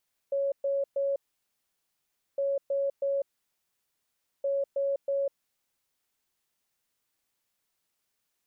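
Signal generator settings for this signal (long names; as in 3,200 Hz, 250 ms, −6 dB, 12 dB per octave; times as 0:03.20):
beeps in groups sine 555 Hz, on 0.20 s, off 0.12 s, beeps 3, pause 1.22 s, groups 3, −25 dBFS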